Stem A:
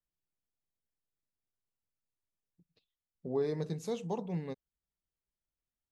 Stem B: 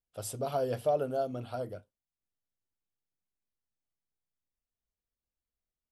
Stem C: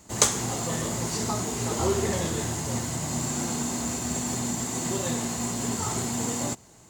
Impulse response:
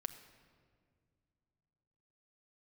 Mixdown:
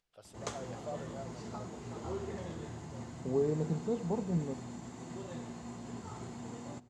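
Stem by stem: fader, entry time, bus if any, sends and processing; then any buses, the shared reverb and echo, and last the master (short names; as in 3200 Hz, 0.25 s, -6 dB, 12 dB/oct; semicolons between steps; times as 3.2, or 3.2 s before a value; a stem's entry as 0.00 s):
-0.5 dB, 0.00 s, no send, tilt shelf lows +4.5 dB
-10.0 dB, 0.00 s, no send, tilt +3.5 dB/oct; upward compressor, threshold -44 dBFS
-16.0 dB, 0.25 s, send -4 dB, high shelf 6500 Hz +6 dB; upward compressor, threshold -35 dBFS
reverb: on, pre-delay 6 ms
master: tape spacing loss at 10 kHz 25 dB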